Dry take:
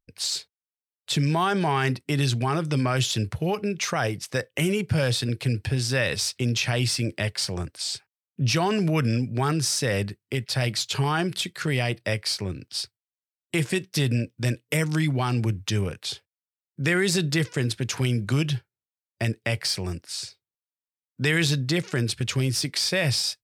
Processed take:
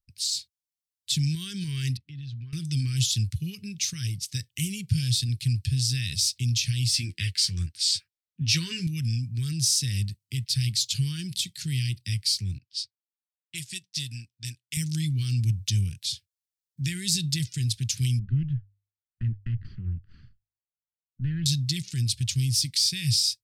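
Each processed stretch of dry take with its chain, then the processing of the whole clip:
1.97–2.53 s: compression 2.5:1, threshold -38 dBFS + distance through air 310 m
6.93–8.87 s: peaking EQ 1.2 kHz +14 dB 2.6 oct + doubling 12 ms -4.5 dB + tape noise reduction on one side only decoder only
12.58–14.77 s: level-controlled noise filter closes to 2.6 kHz, open at -20.5 dBFS + bass shelf 400 Hz -12 dB + upward expansion, over -47 dBFS
18.19–21.46 s: comb filter that takes the minimum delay 0.65 ms + low-pass 1.6 kHz 24 dB/octave + hum notches 50/100 Hz
whole clip: level rider gain up to 3 dB; dynamic bell 1.3 kHz, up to -7 dB, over -40 dBFS, Q 1.5; Chebyshev band-stop 110–4300 Hz, order 2

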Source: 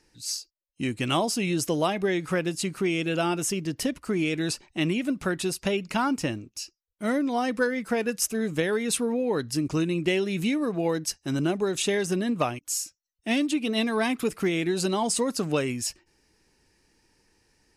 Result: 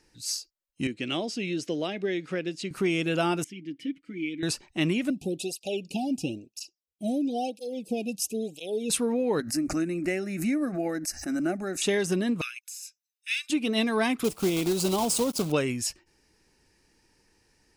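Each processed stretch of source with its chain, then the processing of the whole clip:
0.87–2.71 s: band-pass 240–4200 Hz + peaking EQ 1 kHz -14.5 dB 1.2 oct
3.44–4.43 s: vowel filter i + comb 6.1 ms, depth 69%
5.10–8.90 s: Chebyshev band-stop 790–2500 Hz, order 5 + cancelling through-zero flanger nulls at 1 Hz, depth 2.4 ms
9.40–11.82 s: static phaser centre 660 Hz, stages 8 + swell ahead of each attack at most 99 dB/s
12.41–13.50 s: de-esser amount 70% + steep high-pass 1.6 kHz 48 dB/octave + comb 0.8 ms, depth 62%
14.24–15.54 s: block-companded coder 3-bit + peaking EQ 1.8 kHz -13.5 dB 0.67 oct
whole clip: none

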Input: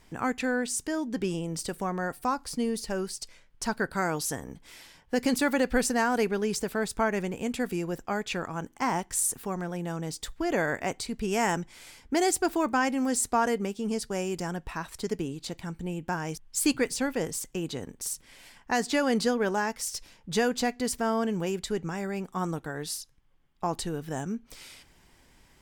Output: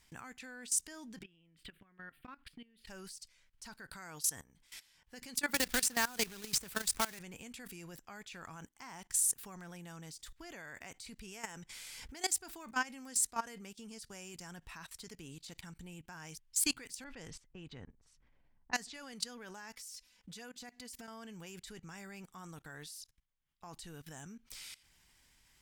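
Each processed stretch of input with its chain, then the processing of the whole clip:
1.23–2.86 s: FFT filter 110 Hz 0 dB, 300 Hz +3 dB, 860 Hz -8 dB, 1.6 kHz +4 dB, 3.2 kHz +4 dB, 5.9 kHz -28 dB, 13 kHz -15 dB + compression 20:1, threshold -36 dBFS
5.54–7.19 s: treble shelf 7.3 kHz +4 dB + companded quantiser 4-bit + three bands compressed up and down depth 100%
11.32–12.14 s: peaking EQ 480 Hz +5.5 dB 0.29 oct + upward compressor, threshold -29 dBFS
17.04–19.13 s: level-controlled noise filter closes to 410 Hz, open at -23 dBFS + bass shelf 93 Hz +8 dB
19.75–21.08 s: comb 4 ms, depth 83% + compression 10:1, threshold -33 dBFS + high-pass 52 Hz 6 dB/octave
whole clip: amplifier tone stack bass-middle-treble 5-5-5; level held to a coarse grid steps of 19 dB; trim +8 dB

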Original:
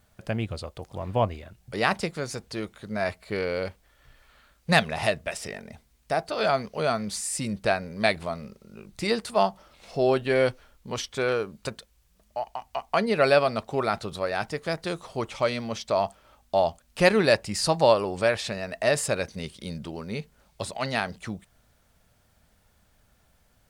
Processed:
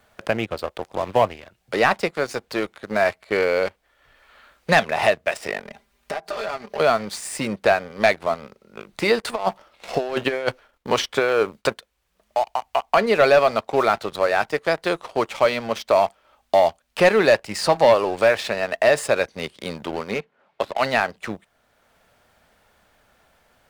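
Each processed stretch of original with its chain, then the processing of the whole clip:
5.65–6.80 s: comb 5 ms, depth 96% + compression, threshold -37 dBFS
9.22–11.74 s: expander -52 dBFS + compressor with a negative ratio -27 dBFS, ratio -0.5
20.14–20.78 s: band-pass 170–3100 Hz + sliding maximum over 3 samples
whole clip: tone controls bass -13 dB, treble -9 dB; waveshaping leveller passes 2; three bands compressed up and down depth 40%; trim +1.5 dB

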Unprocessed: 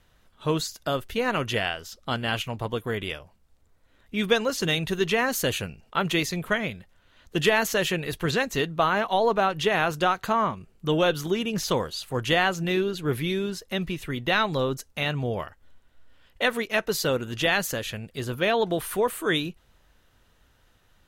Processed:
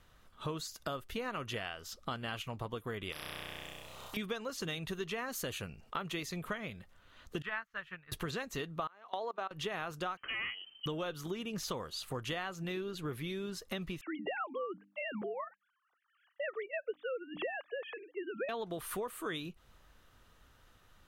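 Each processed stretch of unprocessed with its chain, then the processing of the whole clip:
3.12–4.17 s: touch-sensitive phaser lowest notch 230 Hz, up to 1.3 kHz, full sweep at -39.5 dBFS + flutter echo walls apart 5.6 m, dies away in 1.3 s + spectrum-flattening compressor 4:1
7.42–8.12 s: FFT filter 120 Hz 0 dB, 420 Hz -14 dB, 1.5 kHz +7 dB, 6.6 kHz -18 dB + upward expansion 2.5:1, over -37 dBFS
8.87–9.51 s: level held to a coarse grid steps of 22 dB + expander -42 dBFS + band-pass 340–7500 Hz
10.17–10.86 s: hard clipper -24.5 dBFS + frequency inversion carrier 3.1 kHz
14.01–18.49 s: formants replaced by sine waves + distance through air 310 m + hum notches 50/100/150/200/250/300 Hz
whole clip: peaking EQ 1.2 kHz +6.5 dB 0.28 oct; compression 5:1, threshold -35 dBFS; trim -2 dB

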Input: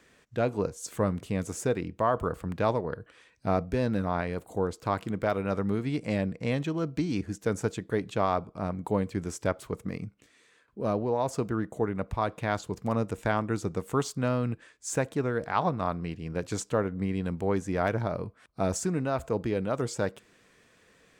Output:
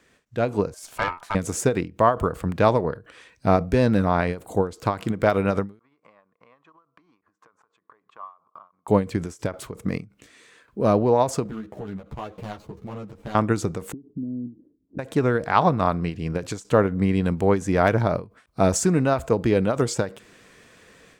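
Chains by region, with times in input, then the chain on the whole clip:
0.74–1.35 s: ring modulator 1.1 kHz + valve stage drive 24 dB, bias 0.8
5.79–8.88 s: compression 8:1, threshold -39 dBFS + band-pass filter 1.1 kHz, Q 7.6 + transient shaper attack +8 dB, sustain -5 dB
11.44–13.35 s: median filter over 25 samples + compression, threshold -36 dBFS + three-phase chorus
13.92–14.99 s: peaking EQ 240 Hz +10 dB 1.8 oct + compression 16:1, threshold -31 dBFS + four-pole ladder low-pass 340 Hz, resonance 55%
whole clip: level rider gain up to 9.5 dB; endings held to a fixed fall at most 200 dB/s

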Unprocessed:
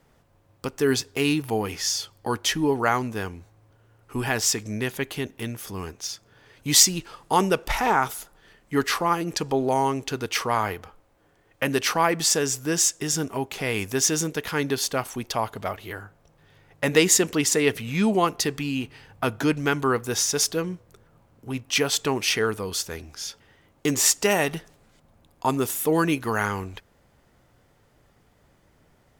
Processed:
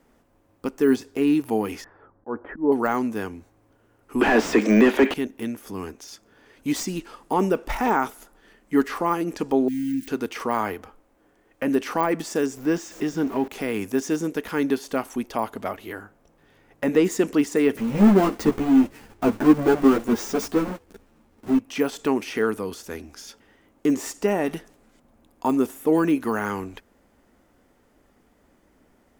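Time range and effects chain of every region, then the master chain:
1.84–2.72 s: steep low-pass 1.6 kHz + dynamic bell 530 Hz, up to +7 dB, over -40 dBFS, Q 1.5 + slow attack 198 ms
4.21–5.14 s: steep high-pass 200 Hz 96 dB/octave + peaking EQ 2.9 kHz +7 dB 1.6 oct + overdrive pedal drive 31 dB, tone 2.1 kHz, clips at -4 dBFS
9.68–10.08 s: zero-crossing glitches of -21.5 dBFS + brick-wall FIR band-stop 340–1500 Hz
12.57–13.48 s: jump at every zero crossing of -34.5 dBFS + peaking EQ 9.6 kHz -12 dB 1.1 oct
17.77–21.59 s: square wave that keeps the level + waveshaping leveller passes 1 + three-phase chorus
whole clip: de-esser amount 80%; graphic EQ 125/250/4000 Hz -12/+9/-4 dB

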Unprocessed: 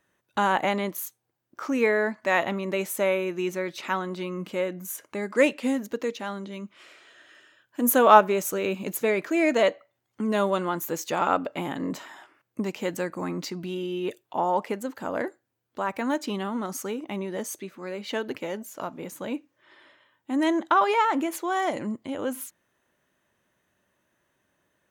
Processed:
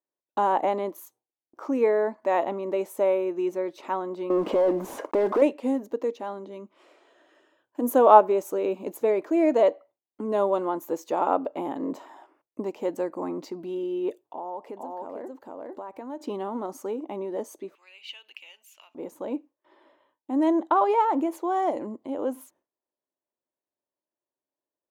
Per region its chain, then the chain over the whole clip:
4.30–5.42 s: block-companded coder 5-bit + overdrive pedal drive 34 dB, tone 1.1 kHz, clips at -8.5 dBFS + compression 2.5:1, threshold -23 dBFS
14.21–16.21 s: delay 451 ms -4.5 dB + compression 3:1, threshold -37 dBFS
17.75–18.95 s: compression 4:1, threshold -32 dBFS + resonant high-pass 2.7 kHz, resonance Q 7.9
whole clip: gate with hold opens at -51 dBFS; high-order bell 520 Hz +14 dB 2.4 oct; trim -12 dB

